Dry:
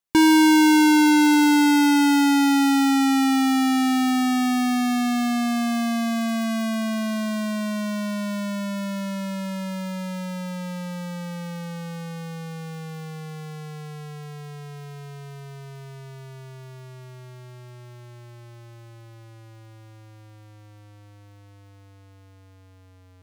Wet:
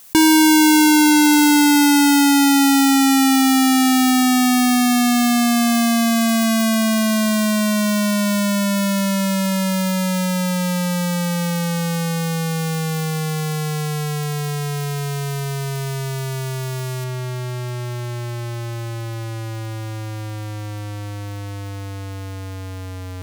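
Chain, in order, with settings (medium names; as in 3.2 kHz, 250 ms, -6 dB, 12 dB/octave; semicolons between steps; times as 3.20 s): treble shelf 5.7 kHz +11.5 dB, from 17.04 s +3.5 dB; level flattener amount 50%; trim +2 dB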